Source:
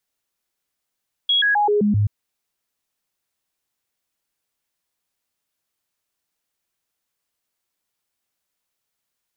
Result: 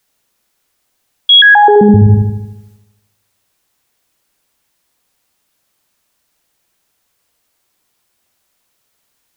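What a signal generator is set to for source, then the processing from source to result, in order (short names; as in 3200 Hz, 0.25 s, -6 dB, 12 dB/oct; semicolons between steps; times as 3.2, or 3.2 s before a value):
stepped sine 3320 Hz down, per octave 1, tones 6, 0.13 s, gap 0.00 s -14.5 dBFS
transient shaper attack -3 dB, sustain +6 dB; on a send: dark delay 77 ms, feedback 57%, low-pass 1200 Hz, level -5 dB; on the sum: maximiser +14.5 dB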